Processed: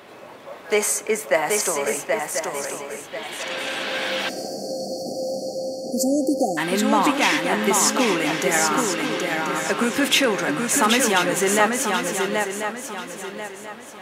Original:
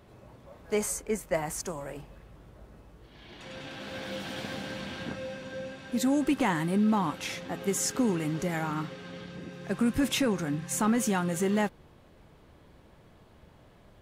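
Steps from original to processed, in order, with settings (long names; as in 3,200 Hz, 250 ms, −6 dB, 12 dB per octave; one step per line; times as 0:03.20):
mains hum 50 Hz, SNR 28 dB
high-pass filter 370 Hz 12 dB per octave
parametric band 2,300 Hz +4.5 dB 1.6 octaves
in parallel at +1 dB: downward compressor, threshold −39 dBFS, peak gain reduction 16.5 dB
on the sum: feedback echo with a long and a short gap by turns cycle 1,038 ms, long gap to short 3 to 1, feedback 33%, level −4 dB
time-frequency box erased 0:04.29–0:06.58, 780–4,300 Hz
convolution reverb RT60 1.6 s, pre-delay 4 ms, DRR 19 dB
level +7.5 dB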